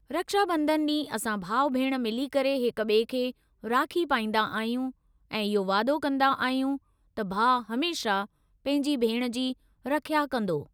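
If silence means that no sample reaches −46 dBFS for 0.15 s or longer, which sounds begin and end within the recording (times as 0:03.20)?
0:03.63–0:04.91
0:05.31–0:06.78
0:07.17–0:08.26
0:08.65–0:09.53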